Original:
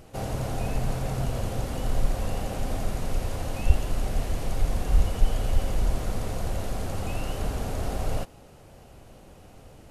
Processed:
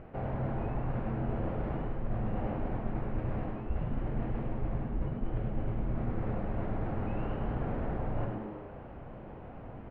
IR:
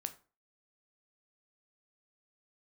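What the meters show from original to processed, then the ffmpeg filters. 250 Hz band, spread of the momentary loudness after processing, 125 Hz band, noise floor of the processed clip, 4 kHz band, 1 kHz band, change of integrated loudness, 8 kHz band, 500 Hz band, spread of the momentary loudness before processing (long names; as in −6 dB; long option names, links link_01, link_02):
0.0 dB, 11 LU, −4.5 dB, −46 dBFS, below −20 dB, −4.5 dB, −5.5 dB, below −40 dB, −4.0 dB, 5 LU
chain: -filter_complex "[1:a]atrim=start_sample=2205,asetrate=39690,aresample=44100[link_01];[0:a][link_01]afir=irnorm=-1:irlink=0,areverse,acompressor=threshold=-34dB:ratio=6,areverse,lowpass=frequency=2100:width=0.5412,lowpass=frequency=2100:width=1.3066,asplit=9[link_02][link_03][link_04][link_05][link_06][link_07][link_08][link_09][link_10];[link_03]adelay=102,afreqshift=98,volume=-6.5dB[link_11];[link_04]adelay=204,afreqshift=196,volume=-10.8dB[link_12];[link_05]adelay=306,afreqshift=294,volume=-15.1dB[link_13];[link_06]adelay=408,afreqshift=392,volume=-19.4dB[link_14];[link_07]adelay=510,afreqshift=490,volume=-23.7dB[link_15];[link_08]adelay=612,afreqshift=588,volume=-28dB[link_16];[link_09]adelay=714,afreqshift=686,volume=-32.3dB[link_17];[link_10]adelay=816,afreqshift=784,volume=-36.6dB[link_18];[link_02][link_11][link_12][link_13][link_14][link_15][link_16][link_17][link_18]amix=inputs=9:normalize=0,volume=3dB"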